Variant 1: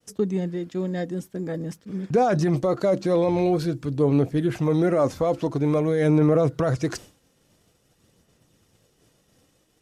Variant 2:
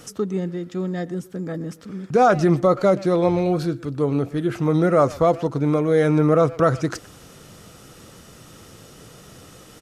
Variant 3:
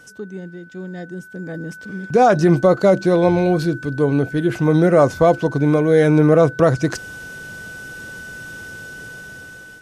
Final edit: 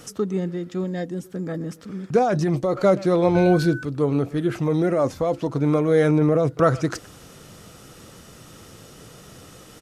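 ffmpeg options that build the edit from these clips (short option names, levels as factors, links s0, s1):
-filter_complex "[0:a]asplit=4[s0][s1][s2][s3];[1:a]asplit=6[s4][s5][s6][s7][s8][s9];[s4]atrim=end=0.842[s10];[s0]atrim=start=0.838:end=1.242[s11];[s5]atrim=start=1.238:end=2.192[s12];[s1]atrim=start=2.188:end=2.752[s13];[s6]atrim=start=2.748:end=3.352[s14];[2:a]atrim=start=3.348:end=3.832[s15];[s7]atrim=start=3.828:end=4.592[s16];[s2]atrim=start=4.588:end=5.492[s17];[s8]atrim=start=5.488:end=6.112[s18];[s3]atrim=start=6.108:end=6.572[s19];[s9]atrim=start=6.568[s20];[s10][s11]acrossfade=d=0.004:c1=hsin:c2=hsin[s21];[s21][s12]acrossfade=d=0.004:c1=hsin:c2=hsin[s22];[s22][s13]acrossfade=d=0.004:c1=hsin:c2=hsin[s23];[s23][s14]acrossfade=d=0.004:c1=hsin:c2=hsin[s24];[s24][s15]acrossfade=d=0.004:c1=hsin:c2=hsin[s25];[s25][s16]acrossfade=d=0.004:c1=hsin:c2=hsin[s26];[s26][s17]acrossfade=d=0.004:c1=hsin:c2=hsin[s27];[s27][s18]acrossfade=d=0.004:c1=hsin:c2=hsin[s28];[s28][s19]acrossfade=d=0.004:c1=hsin:c2=hsin[s29];[s29][s20]acrossfade=d=0.004:c1=hsin:c2=hsin"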